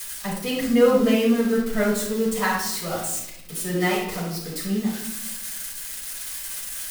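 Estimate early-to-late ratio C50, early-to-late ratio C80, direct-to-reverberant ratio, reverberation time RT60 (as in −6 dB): 2.0 dB, 6.0 dB, −8.5 dB, 0.80 s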